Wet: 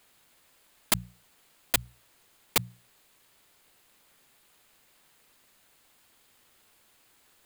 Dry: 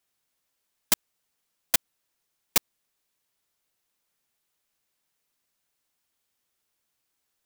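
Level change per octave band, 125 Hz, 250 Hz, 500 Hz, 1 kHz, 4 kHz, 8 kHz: +9.5, +2.5, +1.5, +1.0, -1.0, -3.5 dB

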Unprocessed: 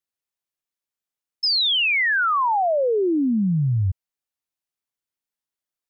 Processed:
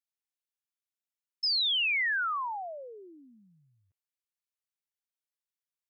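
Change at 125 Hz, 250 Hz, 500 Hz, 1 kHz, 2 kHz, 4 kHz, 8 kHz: under -40 dB, -35.0 dB, -23.0 dB, -13.0 dB, -8.5 dB, -7.5 dB, n/a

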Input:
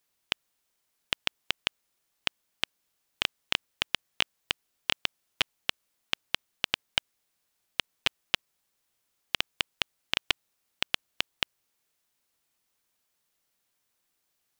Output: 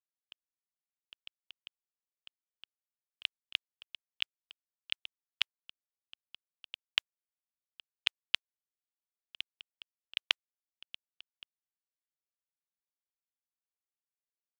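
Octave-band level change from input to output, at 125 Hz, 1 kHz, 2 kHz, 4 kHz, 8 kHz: under -30 dB, -15.0 dB, -8.5 dB, -7.0 dB, -15.0 dB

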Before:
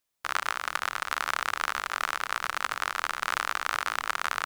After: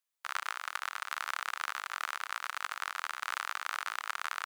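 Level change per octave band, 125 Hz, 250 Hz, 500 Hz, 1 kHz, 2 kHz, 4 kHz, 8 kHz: n/a, under -20 dB, -12.5 dB, -7.5 dB, -6.5 dB, -6.5 dB, -6.5 dB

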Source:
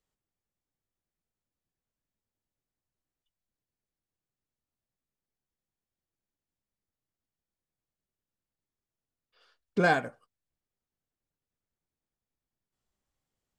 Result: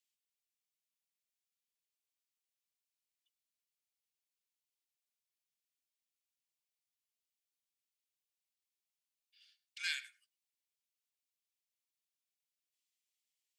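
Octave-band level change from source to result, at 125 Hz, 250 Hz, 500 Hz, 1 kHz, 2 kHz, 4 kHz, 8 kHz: under -40 dB, under -40 dB, under -40 dB, -34.5 dB, -12.0 dB, +1.5 dB, +1.5 dB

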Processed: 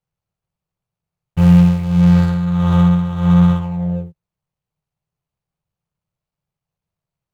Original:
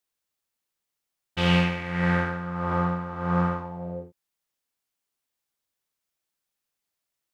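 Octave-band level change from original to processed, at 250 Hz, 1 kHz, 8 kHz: +14.5 dB, +1.5 dB, n/a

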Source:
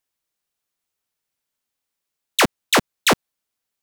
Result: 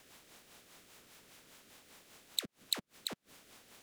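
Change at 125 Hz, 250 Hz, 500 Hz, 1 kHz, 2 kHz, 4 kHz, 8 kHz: -26.0, -26.5, -29.5, -32.0, -30.0, -15.0, -17.0 dB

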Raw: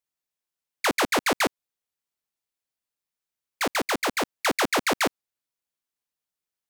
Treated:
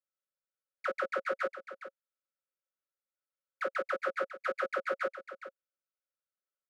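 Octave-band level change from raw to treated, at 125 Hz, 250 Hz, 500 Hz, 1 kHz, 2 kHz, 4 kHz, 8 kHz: under -20 dB, -20.5 dB, -5.5 dB, -10.0 dB, -10.0 dB, -24.0 dB, under -30 dB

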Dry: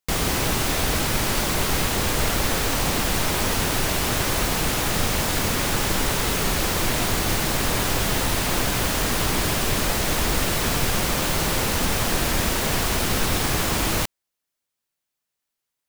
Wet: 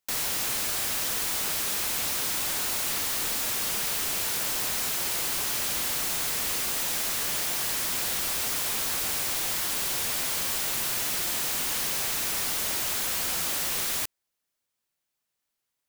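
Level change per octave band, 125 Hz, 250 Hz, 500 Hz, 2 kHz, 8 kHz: -20.0, -17.0, -13.5, -8.0, -2.0 dB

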